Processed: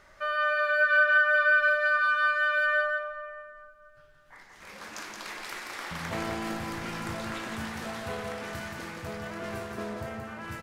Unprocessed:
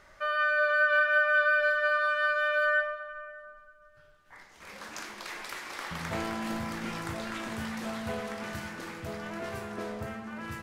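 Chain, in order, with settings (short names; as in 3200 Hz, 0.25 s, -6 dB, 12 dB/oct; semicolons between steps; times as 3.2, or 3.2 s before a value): echo 0.173 s -5 dB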